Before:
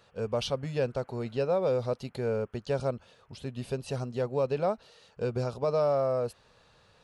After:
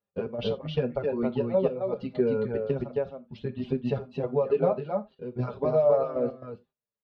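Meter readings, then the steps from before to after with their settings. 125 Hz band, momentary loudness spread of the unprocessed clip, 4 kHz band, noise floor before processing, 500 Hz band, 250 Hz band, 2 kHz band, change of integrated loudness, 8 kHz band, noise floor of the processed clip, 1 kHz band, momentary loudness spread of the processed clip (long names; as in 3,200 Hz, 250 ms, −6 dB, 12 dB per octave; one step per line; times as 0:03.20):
+0.5 dB, 10 LU, can't be measured, −63 dBFS, +3.0 dB, +6.0 dB, −2.0 dB, +2.5 dB, below −20 dB, below −85 dBFS, 0.0 dB, 12 LU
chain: low-pass filter 3,500 Hz 24 dB per octave
noise gate −51 dBFS, range −34 dB
reverb reduction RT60 1.8 s
parametric band 260 Hz +10 dB 2.9 octaves
comb filter 4.9 ms, depth 34%
downward compressor, threshold −22 dBFS, peak gain reduction 6.5 dB
gate pattern "xx.x..xxx" 117 BPM −12 dB
single-tap delay 266 ms −4 dB
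reverb whose tail is shaped and stops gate 110 ms falling, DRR 11 dB
barber-pole flanger 6.8 ms −2 Hz
level +3.5 dB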